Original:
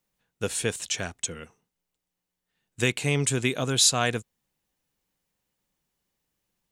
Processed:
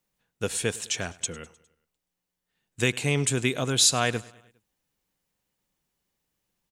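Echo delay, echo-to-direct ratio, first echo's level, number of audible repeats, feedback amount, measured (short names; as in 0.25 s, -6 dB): 0.102 s, -20.5 dB, -22.0 dB, 3, 56%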